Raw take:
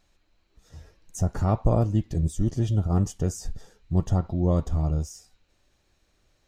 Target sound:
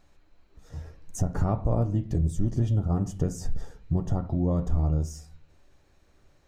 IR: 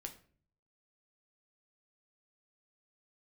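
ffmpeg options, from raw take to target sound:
-filter_complex "[0:a]acompressor=threshold=-28dB:ratio=4,asplit=2[link_01][link_02];[1:a]atrim=start_sample=2205,lowpass=2200[link_03];[link_02][link_03]afir=irnorm=-1:irlink=0,volume=4.5dB[link_04];[link_01][link_04]amix=inputs=2:normalize=0"

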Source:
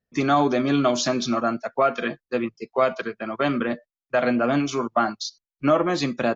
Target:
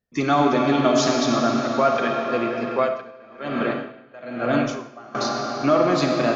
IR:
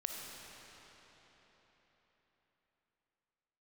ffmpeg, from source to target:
-filter_complex "[1:a]atrim=start_sample=2205[link_01];[0:a][link_01]afir=irnorm=-1:irlink=0,asettb=1/sr,asplit=3[link_02][link_03][link_04];[link_02]atrim=end=2.754[link_05];[link_03]atrim=start=2.75:end=5.15,asetpts=PTS-STARTPTS,afade=type=in:duration=0.004:curve=qsin,afade=type=out:start_time=2.396:duration=0.004:curve=qsin,aeval=exprs='val(0)*pow(10,-22*(0.5-0.5*cos(2*PI*1.1*n/s))/20)':channel_layout=same[link_06];[link_04]atrim=start=5.146[link_07];[link_05][link_06]acrossfade=duration=0.004:curve1=hsin:curve2=qsin[link_08];[link_08][link_07]acrossfade=duration=0.004:curve1=qsin:curve2=hsin,volume=2dB"

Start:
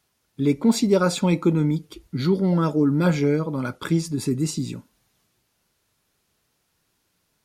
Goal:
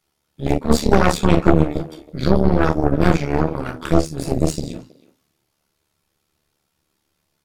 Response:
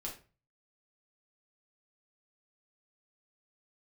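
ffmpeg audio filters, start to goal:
-filter_complex "[0:a]bandreject=frequency=50:width_type=h:width=6,bandreject=frequency=100:width_type=h:width=6,bandreject=frequency=150:width_type=h:width=6,bandreject=frequency=200:width_type=h:width=6,bandreject=frequency=250:width_type=h:width=6[link_01];[1:a]atrim=start_sample=2205,atrim=end_sample=3528[link_02];[link_01][link_02]afir=irnorm=-1:irlink=0,tremolo=f=73:d=0.71,aeval=exprs='0.473*(cos(1*acos(clip(val(0)/0.473,-1,1)))-cos(1*PI/2))+0.168*(cos(6*acos(clip(val(0)/0.473,-1,1)))-cos(6*PI/2))':channel_layout=same,asplit=2[link_03][link_04];[link_04]adelay=320,highpass=300,lowpass=3400,asoftclip=type=hard:threshold=-13.5dB,volume=-18dB[link_05];[link_03][link_05]amix=inputs=2:normalize=0,volume=3.5dB"

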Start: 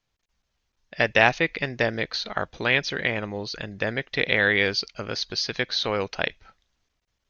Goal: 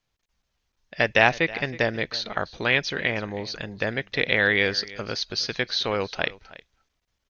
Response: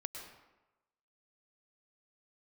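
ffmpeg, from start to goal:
-af "aecho=1:1:319:0.112"

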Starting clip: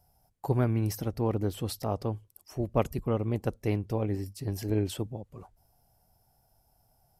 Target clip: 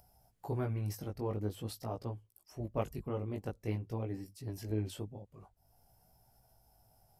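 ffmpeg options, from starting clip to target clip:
ffmpeg -i in.wav -af "flanger=delay=16.5:depth=3.7:speed=0.47,acompressor=mode=upward:threshold=-51dB:ratio=2.5,volume=-5.5dB" out.wav

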